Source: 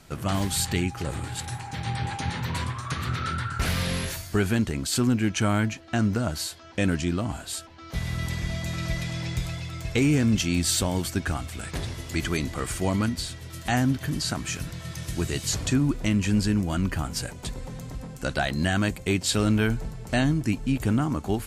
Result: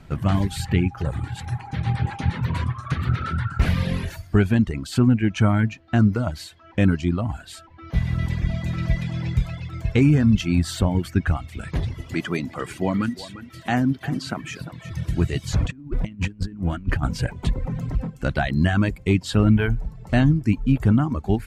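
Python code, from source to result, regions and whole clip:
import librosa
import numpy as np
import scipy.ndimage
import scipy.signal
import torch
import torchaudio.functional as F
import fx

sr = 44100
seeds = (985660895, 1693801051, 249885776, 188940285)

y = fx.chain(x, sr, fx.highpass(hz=190.0, slope=12),
    fx.echo_single(ms=349, db=-12.5), at=(12.14, 14.91))
y = fx.chain(y, sr, fx.over_compress(threshold_db=-29.0, ratio=-0.5),
    fx.doppler_dist(depth_ms=0.14), at=(15.54, 18.1))
y = fx.dereverb_blind(y, sr, rt60_s=1.0)
y = fx.bass_treble(y, sr, bass_db=7, treble_db=-13)
y = y * 10.0 ** (2.5 / 20.0)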